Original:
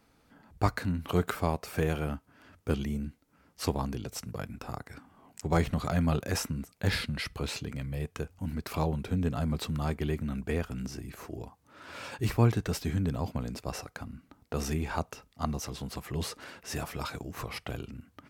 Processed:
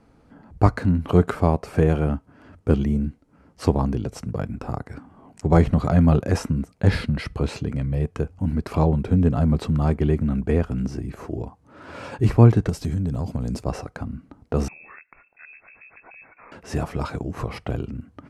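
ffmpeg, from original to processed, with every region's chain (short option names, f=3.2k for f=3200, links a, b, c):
-filter_complex "[0:a]asettb=1/sr,asplit=3[a][b][c];[a]atrim=end=12.694[d];[b]atrim=start=12.69:end=13.64,asetpts=PTS-STARTPTS,afade=t=in:d=0.004:c=qsin,afade=t=out:st=0.946:d=0.004:c=qsin,bass=f=250:g=4,treble=f=4k:g=12,acompressor=threshold=-32dB:ratio=6:attack=3.2:release=140:knee=1:detection=peak,aeval=exprs='(mod(15.8*val(0)+1,2)-1)/15.8':c=same[e];[c]atrim=start=13.636[f];[d][e]acrossfade=d=0.004:c1=hsin:c2=qsin[g];[g][f]acrossfade=d=0.004:c1=qsin:c2=hsin,asettb=1/sr,asplit=3[h][i][j];[h]atrim=end=14.684[k];[i]atrim=start=14.68:end=16.52,asetpts=PTS-STARTPTS,afade=t=in:d=0.004:c=qsin,afade=t=out:st=1.836:d=0.004:c=qsin,acompressor=threshold=-49dB:ratio=3:attack=3.2:release=140:knee=1:detection=peak,lowpass=f=2.3k:t=q:w=0.5098,lowpass=f=2.3k:t=q:w=0.6013,lowpass=f=2.3k:t=q:w=0.9,lowpass=f=2.3k:t=q:w=2.563,afreqshift=-2700[l];[j]atrim=start=16.516[m];[k][l]acrossfade=d=0.004:c1=hsin:c2=qsin[n];[n][m]acrossfade=d=0.004:c1=qsin:c2=hsin,lowpass=f=11k:w=0.5412,lowpass=f=11k:w=1.3066,tiltshelf=f=1.4k:g=7,bandreject=f=3.6k:w=26,volume=4.5dB"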